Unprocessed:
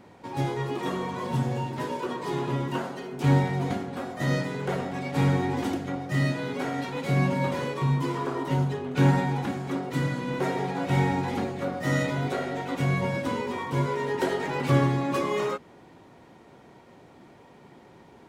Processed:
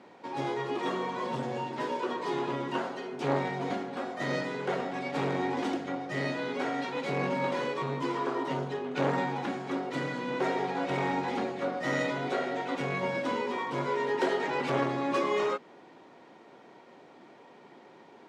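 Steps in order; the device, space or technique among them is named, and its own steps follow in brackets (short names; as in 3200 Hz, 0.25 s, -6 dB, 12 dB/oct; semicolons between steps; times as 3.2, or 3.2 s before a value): public-address speaker with an overloaded transformer (core saturation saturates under 550 Hz; BPF 270–5800 Hz)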